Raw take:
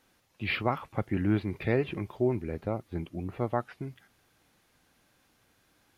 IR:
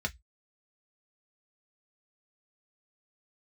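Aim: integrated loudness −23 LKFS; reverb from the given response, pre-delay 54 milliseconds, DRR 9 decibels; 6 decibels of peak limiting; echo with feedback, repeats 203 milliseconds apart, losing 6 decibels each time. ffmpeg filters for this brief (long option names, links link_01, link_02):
-filter_complex "[0:a]alimiter=limit=-19dB:level=0:latency=1,aecho=1:1:203|406|609|812|1015|1218:0.501|0.251|0.125|0.0626|0.0313|0.0157,asplit=2[link_01][link_02];[1:a]atrim=start_sample=2205,adelay=54[link_03];[link_02][link_03]afir=irnorm=-1:irlink=0,volume=-13.5dB[link_04];[link_01][link_04]amix=inputs=2:normalize=0,volume=9dB"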